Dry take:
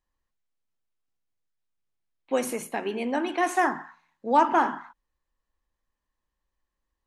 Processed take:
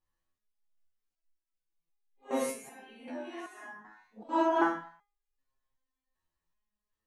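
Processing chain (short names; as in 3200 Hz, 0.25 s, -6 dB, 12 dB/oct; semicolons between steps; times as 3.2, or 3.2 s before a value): phase scrambler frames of 0.2 s; 2.5–4.29 compressor 12:1, threshold -36 dBFS, peak gain reduction 16.5 dB; stepped resonator 2.6 Hz 85–410 Hz; gain +6.5 dB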